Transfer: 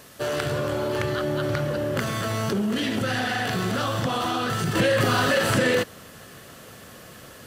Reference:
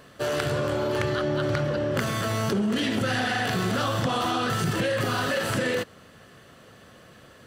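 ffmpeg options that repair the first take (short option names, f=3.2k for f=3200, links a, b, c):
-af "agate=range=-21dB:threshold=-37dB,asetnsamples=n=441:p=0,asendcmd='4.75 volume volume -5dB',volume=0dB"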